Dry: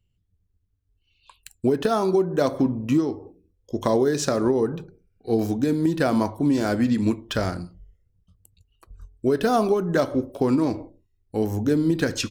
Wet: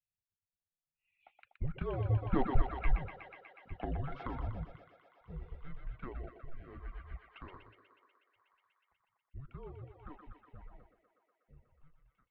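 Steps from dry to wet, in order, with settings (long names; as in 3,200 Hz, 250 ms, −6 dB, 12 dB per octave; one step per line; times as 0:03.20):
fade-out on the ending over 2.20 s
source passing by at 0:02.53, 8 m/s, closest 2.9 metres
single-sideband voice off tune −280 Hz 170–2,800 Hz
parametric band 230 Hz −8.5 dB 2.1 octaves
on a send: feedback echo with a high-pass in the loop 122 ms, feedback 81%, high-pass 300 Hz, level −3.5 dB
on the sum: reverb reduction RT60 0.65 s
rotating-speaker cabinet horn 0.65 Hz
in parallel at +1 dB: downward compressor, threshold −41 dBFS, peak gain reduction 21.5 dB
on the sum: level −2.5 dB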